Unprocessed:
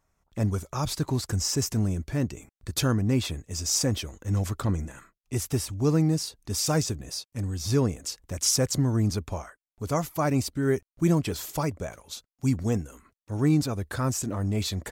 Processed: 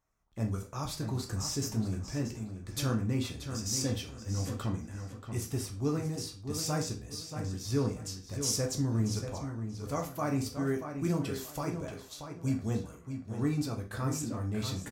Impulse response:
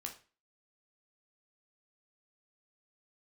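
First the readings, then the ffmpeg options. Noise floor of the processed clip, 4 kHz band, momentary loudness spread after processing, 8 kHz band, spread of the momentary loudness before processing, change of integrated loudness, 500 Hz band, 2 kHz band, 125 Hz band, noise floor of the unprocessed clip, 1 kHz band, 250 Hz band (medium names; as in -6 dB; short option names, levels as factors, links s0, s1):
-50 dBFS, -7.0 dB, 8 LU, -7.0 dB, 11 LU, -7.0 dB, -6.5 dB, -6.5 dB, -6.5 dB, under -85 dBFS, -6.0 dB, -6.0 dB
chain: -filter_complex "[0:a]asplit=2[s0][s1];[s1]adelay=632,lowpass=f=4800:p=1,volume=0.398,asplit=2[s2][s3];[s3]adelay=632,lowpass=f=4800:p=1,volume=0.27,asplit=2[s4][s5];[s5]adelay=632,lowpass=f=4800:p=1,volume=0.27[s6];[s0][s2][s4][s6]amix=inputs=4:normalize=0[s7];[1:a]atrim=start_sample=2205[s8];[s7][s8]afir=irnorm=-1:irlink=0,volume=0.596"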